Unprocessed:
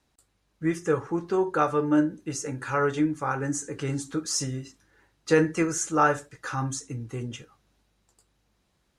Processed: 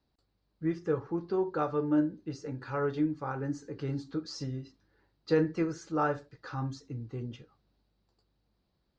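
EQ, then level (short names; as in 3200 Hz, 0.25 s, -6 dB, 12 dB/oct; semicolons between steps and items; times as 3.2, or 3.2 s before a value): ladder low-pass 4900 Hz, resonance 70%; tilt shelf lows +7.5 dB, about 1500 Hz; 0.0 dB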